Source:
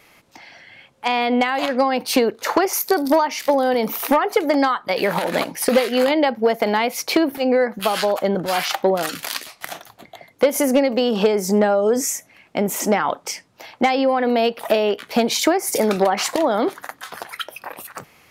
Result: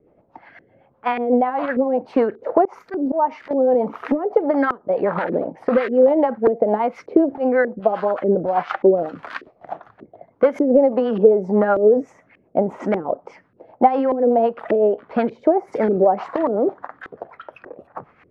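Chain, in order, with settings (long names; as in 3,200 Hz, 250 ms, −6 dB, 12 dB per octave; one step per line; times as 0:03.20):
auto-filter low-pass saw up 1.7 Hz 370–1,800 Hz
rotating-speaker cabinet horn 8 Hz
0:02.65–0:03.51: volume swells 125 ms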